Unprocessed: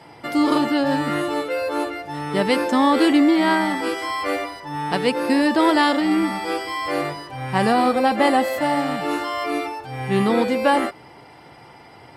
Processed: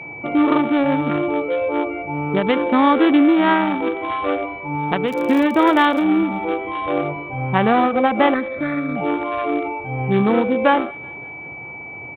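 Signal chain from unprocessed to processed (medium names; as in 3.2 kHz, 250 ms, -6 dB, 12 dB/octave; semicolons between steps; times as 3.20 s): local Wiener filter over 25 samples; dynamic bell 1.3 kHz, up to +4 dB, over -34 dBFS, Q 2.1; in parallel at +2 dB: compression, threshold -27 dBFS, peak gain reduction 14 dB; on the sum: resampled via 8 kHz; 5.05–6.01 s: crackle 65 per s -23 dBFS; 8.34–8.96 s: static phaser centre 3 kHz, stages 6; on a send: thinning echo 189 ms, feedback 56%, high-pass 800 Hz, level -24 dB; on the sum: whistle 2.3 kHz -32 dBFS; endings held to a fixed fall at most 110 dB/s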